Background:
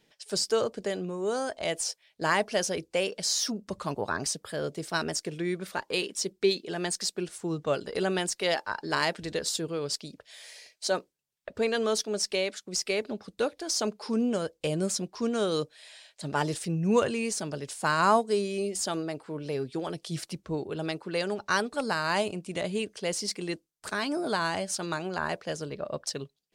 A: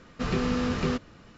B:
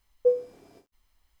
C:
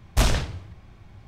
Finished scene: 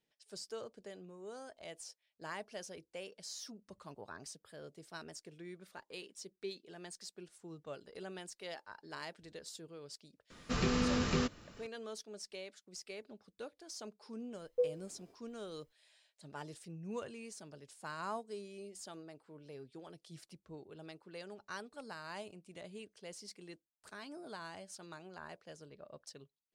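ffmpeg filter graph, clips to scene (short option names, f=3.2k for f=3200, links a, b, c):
-filter_complex "[0:a]volume=-18.5dB[a];[1:a]crystalizer=i=2:c=0,atrim=end=1.37,asetpts=PTS-STARTPTS,volume=-5.5dB,afade=t=in:d=0.004:c=hsin,afade=t=out:st=1.366:d=0.004:c=hsin,adelay=10300[b];[2:a]atrim=end=1.4,asetpts=PTS-STARTPTS,volume=-10.5dB,afade=t=in:d=0.004:c=hsin,afade=t=out:st=1.396:d=0.004:c=hsin,adelay=14330[c];[a][b][c]amix=inputs=3:normalize=0"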